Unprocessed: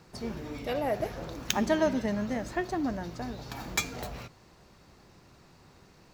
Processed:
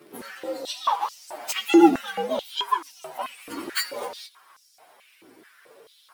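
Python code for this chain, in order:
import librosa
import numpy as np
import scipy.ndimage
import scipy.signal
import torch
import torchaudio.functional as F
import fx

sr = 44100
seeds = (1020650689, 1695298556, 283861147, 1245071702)

y = fx.partial_stretch(x, sr, pct=129)
y = fx.filter_held_highpass(y, sr, hz=4.6, low_hz=320.0, high_hz=5500.0)
y = y * 10.0 ** (7.5 / 20.0)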